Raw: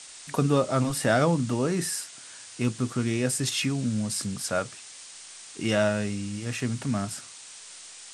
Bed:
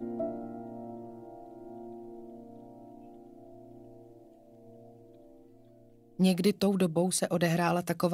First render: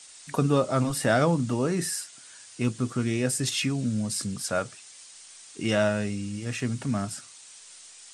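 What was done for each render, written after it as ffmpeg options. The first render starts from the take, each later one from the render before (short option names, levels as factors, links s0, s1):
-af "afftdn=nr=6:nf=-46"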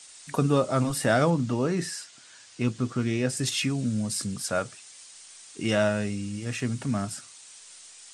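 -filter_complex "[0:a]asettb=1/sr,asplit=3[s0][s1][s2];[s0]atrim=end=1.304[s3];[s1]atrim=start=1.3:end=3.37,asetpts=PTS-STARTPTS,afade=t=in:d=0.004:c=qsin,afade=t=out:st=2.066:d=0.004:c=qsin,lowpass=6500[s4];[s2]atrim=start=3.366[s5];[s3][s4]acrossfade=d=0.004:c1=hsin:c2=qsin[s6];[s6][s5]acrossfade=d=0.004:c1=qsin:c2=hsin"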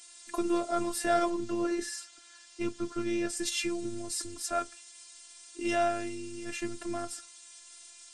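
-af "asoftclip=type=tanh:threshold=0.316,afftfilt=real='hypot(re,im)*cos(PI*b)':imag='0':win_size=512:overlap=0.75"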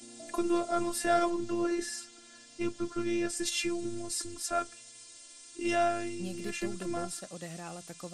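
-filter_complex "[1:a]volume=0.168[s0];[0:a][s0]amix=inputs=2:normalize=0"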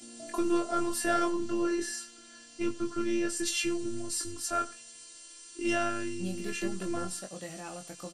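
-filter_complex "[0:a]asplit=2[s0][s1];[s1]adelay=21,volume=0.596[s2];[s0][s2]amix=inputs=2:normalize=0,aecho=1:1:91:0.112"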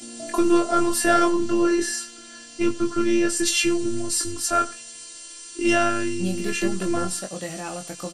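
-af "volume=2.99"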